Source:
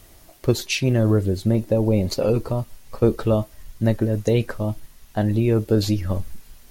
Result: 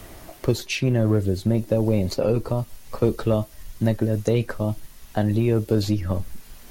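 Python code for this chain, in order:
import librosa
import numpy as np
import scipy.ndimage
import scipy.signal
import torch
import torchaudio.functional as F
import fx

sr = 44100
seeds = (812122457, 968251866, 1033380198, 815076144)

p1 = np.clip(10.0 ** (13.5 / 20.0) * x, -1.0, 1.0) / 10.0 ** (13.5 / 20.0)
p2 = x + (p1 * 10.0 ** (-4.0 / 20.0))
p3 = fx.band_squash(p2, sr, depth_pct=40)
y = p3 * 10.0 ** (-5.5 / 20.0)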